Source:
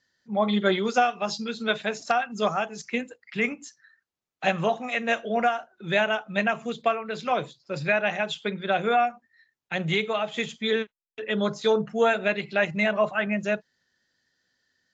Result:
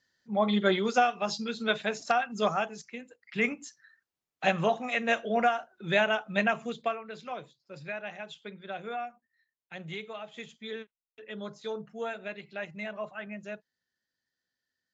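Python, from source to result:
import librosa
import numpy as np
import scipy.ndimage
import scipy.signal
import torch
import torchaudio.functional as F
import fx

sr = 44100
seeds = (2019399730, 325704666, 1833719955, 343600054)

y = fx.gain(x, sr, db=fx.line((2.7, -2.5), (2.96, -14.0), (3.41, -2.0), (6.52, -2.0), (7.41, -14.0)))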